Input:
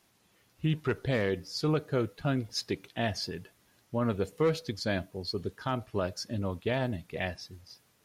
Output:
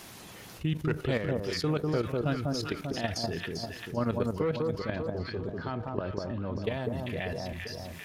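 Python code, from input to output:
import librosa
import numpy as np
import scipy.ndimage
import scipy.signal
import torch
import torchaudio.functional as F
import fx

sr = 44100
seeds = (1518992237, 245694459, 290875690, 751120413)

y = fx.lowpass(x, sr, hz=2600.0, slope=12, at=(4.4, 6.64))
y = fx.level_steps(y, sr, step_db=14)
y = fx.echo_alternate(y, sr, ms=197, hz=1200.0, feedback_pct=58, wet_db=-3.5)
y = fx.env_flatten(y, sr, amount_pct=50)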